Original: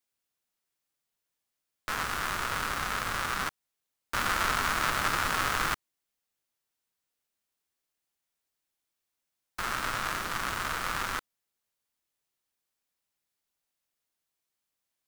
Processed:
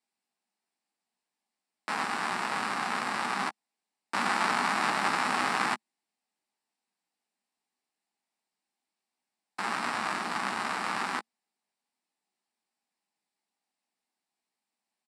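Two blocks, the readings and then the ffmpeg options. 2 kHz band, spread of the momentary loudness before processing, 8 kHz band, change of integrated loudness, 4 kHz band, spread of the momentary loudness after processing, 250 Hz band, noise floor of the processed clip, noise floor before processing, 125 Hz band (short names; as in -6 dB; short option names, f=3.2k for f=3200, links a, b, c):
0.0 dB, 9 LU, -4.5 dB, 0.0 dB, -1.5 dB, 9 LU, +4.5 dB, under -85 dBFS, -85 dBFS, -6.0 dB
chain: -filter_complex "[0:a]highpass=f=180:w=0.5412,highpass=f=180:w=1.3066,equalizer=f=220:t=q:w=4:g=8,equalizer=f=520:t=q:w=4:g=-5,equalizer=f=810:t=q:w=4:g=8,equalizer=f=1.4k:t=q:w=4:g=-5,equalizer=f=3.3k:t=q:w=4:g=-6,equalizer=f=6.4k:t=q:w=4:g=-10,lowpass=f=8.7k:w=0.5412,lowpass=f=8.7k:w=1.3066,asplit=2[a][b];[b]adelay=16,volume=-9.5dB[c];[a][c]amix=inputs=2:normalize=0,volume=1.5dB"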